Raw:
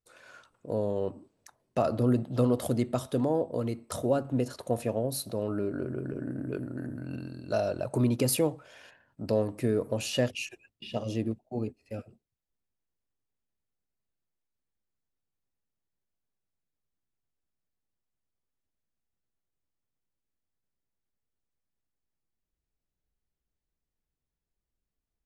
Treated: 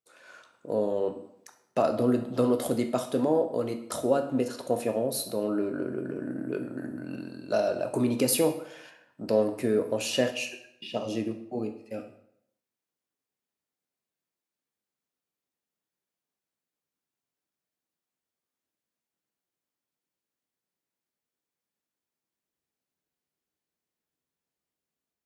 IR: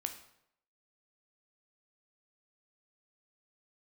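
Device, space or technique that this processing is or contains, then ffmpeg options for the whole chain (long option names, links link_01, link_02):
far laptop microphone: -filter_complex "[1:a]atrim=start_sample=2205[link_01];[0:a][link_01]afir=irnorm=-1:irlink=0,highpass=200,dynaudnorm=framelen=130:gausssize=5:maxgain=3.5dB"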